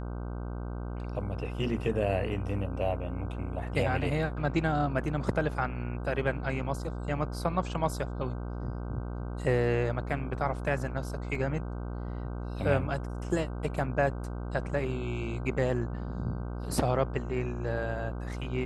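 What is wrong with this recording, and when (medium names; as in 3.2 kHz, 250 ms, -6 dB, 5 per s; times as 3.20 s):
buzz 60 Hz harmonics 26 -36 dBFS
11.35 s: dropout 2.7 ms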